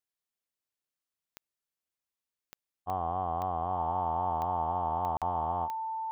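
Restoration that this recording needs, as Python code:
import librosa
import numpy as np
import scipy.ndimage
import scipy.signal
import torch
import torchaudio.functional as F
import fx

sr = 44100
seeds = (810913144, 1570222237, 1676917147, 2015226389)

y = fx.fix_declick_ar(x, sr, threshold=10.0)
y = fx.notch(y, sr, hz=890.0, q=30.0)
y = fx.fix_interpolate(y, sr, at_s=(5.17,), length_ms=47.0)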